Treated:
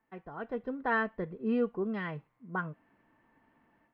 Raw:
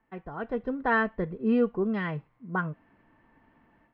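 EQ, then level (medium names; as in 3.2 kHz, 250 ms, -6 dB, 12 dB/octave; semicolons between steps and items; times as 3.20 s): bass shelf 100 Hz -9 dB; -4.5 dB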